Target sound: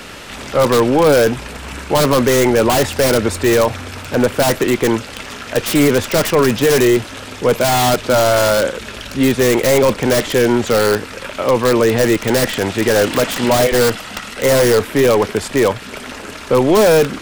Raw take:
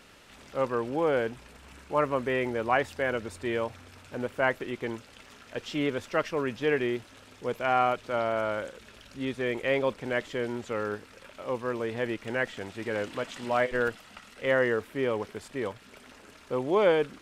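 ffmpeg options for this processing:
-filter_complex "[0:a]apsyclip=25.1,acrossover=split=180|930[s0][s1][s2];[s2]aeval=exprs='(mod(2.51*val(0)+1,2)-1)/2.51':c=same[s3];[s0][s1][s3]amix=inputs=3:normalize=0,volume=0.473"

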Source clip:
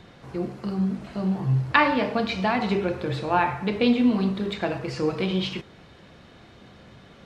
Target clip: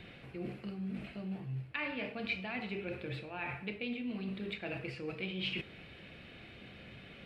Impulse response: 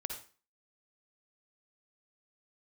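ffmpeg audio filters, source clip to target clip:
-af "areverse,acompressor=threshold=0.02:ratio=6,areverse,equalizer=f=1000:t=o:w=0.67:g=-8,equalizer=f=2500:t=o:w=0.67:g=12,equalizer=f=6300:t=o:w=0.67:g=-11,volume=0.631"

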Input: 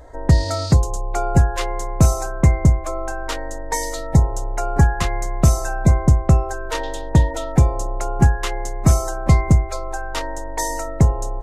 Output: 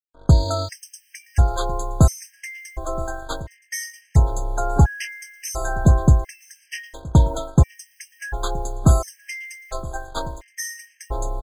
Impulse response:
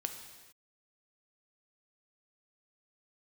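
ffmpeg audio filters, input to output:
-af "agate=range=0.0794:threshold=0.0631:ratio=16:detection=peak,acrusher=bits=7:mix=0:aa=0.5,aecho=1:1:971|1942:0.0891|0.025,afftfilt=real='re*gt(sin(2*PI*0.72*pts/sr)*(1-2*mod(floor(b*sr/1024/1600),2)),0)':imag='im*gt(sin(2*PI*0.72*pts/sr)*(1-2*mod(floor(b*sr/1024/1600),2)),0)':win_size=1024:overlap=0.75"

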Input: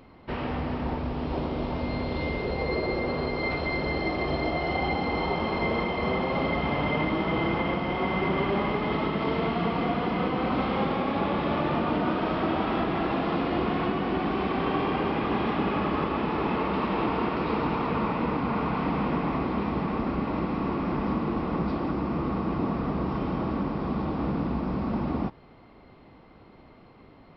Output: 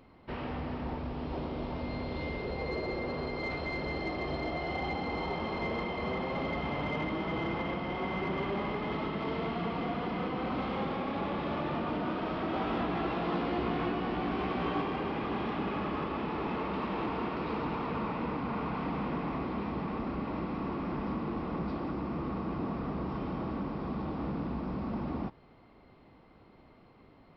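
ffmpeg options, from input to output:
-filter_complex "[0:a]asoftclip=type=tanh:threshold=0.119,asettb=1/sr,asplit=3[s0][s1][s2];[s0]atrim=end=12.524[s3];[s1]atrim=start=12.52:end=14.82,asetpts=PTS-STARTPTS,afade=t=in:d=0.004:c=qsin,afade=t=out:st=2.296:d=0.004:c=qsin,asplit=2[s4][s5];[s5]adelay=17,volume=0.75[s6];[s4][s6]amix=inputs=2:normalize=0,atrim=end_sample=101430[s7];[s2]atrim=start=14.816[s8];[s3][s7]acrossfade=d=0.004:c1=hsin:c2=qsin[s9];[s9][s8]acrossfade=d=0.004:c1=qsin:c2=hsin,volume=0.501"

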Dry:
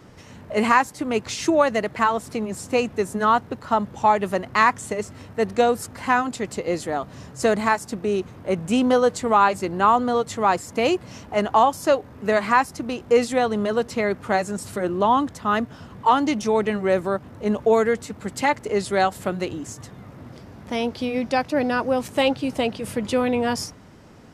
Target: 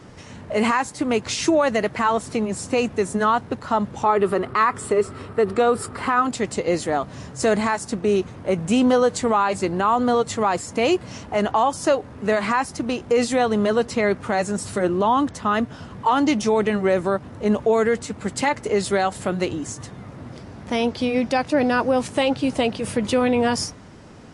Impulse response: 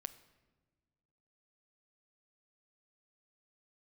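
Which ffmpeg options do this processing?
-filter_complex "[0:a]asettb=1/sr,asplit=3[s0][s1][s2];[s0]atrim=end=4.034[s3];[s1]atrim=start=4.03:end=6.25,asetpts=PTS-STARTPTS,afade=t=in:d=0.004:c=qsin,afade=t=out:st=2.216:d=0.004:c=qsin,equalizer=f=400:t=o:w=0.33:g=11,equalizer=f=1250:t=o:w=0.33:g=11,equalizer=f=6300:t=o:w=0.33:g=-11[s4];[s2]atrim=start=6.246[s5];[s3][s4]acrossfade=d=0.004:c1=hsin:c2=qsin[s6];[s6][s5]acrossfade=d=0.004:c1=qsin:c2=hsin,alimiter=level_in=4.22:limit=0.891:release=50:level=0:latency=1,volume=0.376" -ar 24000 -c:a libmp3lame -b:a 48k

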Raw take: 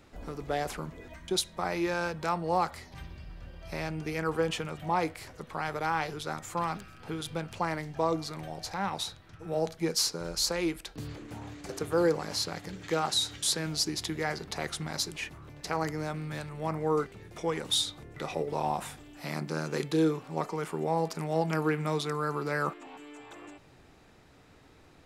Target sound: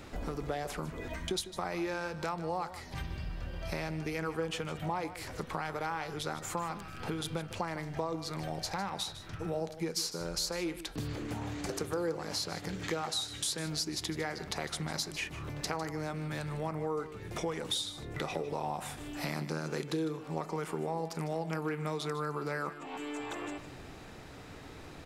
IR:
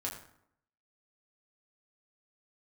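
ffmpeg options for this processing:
-af "acompressor=threshold=0.00631:ratio=4,aecho=1:1:153:0.211,volume=2.82"

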